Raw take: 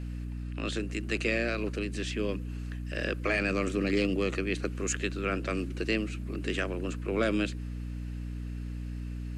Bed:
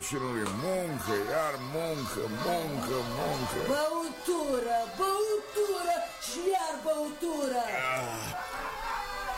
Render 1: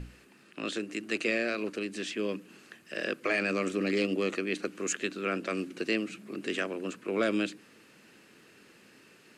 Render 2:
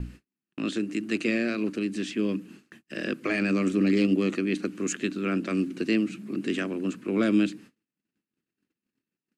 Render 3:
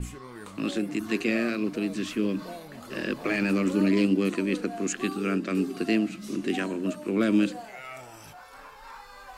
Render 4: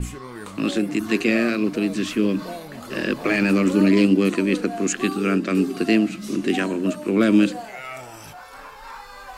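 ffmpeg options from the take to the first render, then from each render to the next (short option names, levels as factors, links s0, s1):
-af "bandreject=f=60:t=h:w=6,bandreject=f=120:t=h:w=6,bandreject=f=180:t=h:w=6,bandreject=f=240:t=h:w=6,bandreject=f=300:t=h:w=6"
-af "agate=range=0.01:threshold=0.00251:ratio=16:detection=peak,lowshelf=f=370:t=q:w=1.5:g=8"
-filter_complex "[1:a]volume=0.299[s0];[0:a][s0]amix=inputs=2:normalize=0"
-af "volume=2.11"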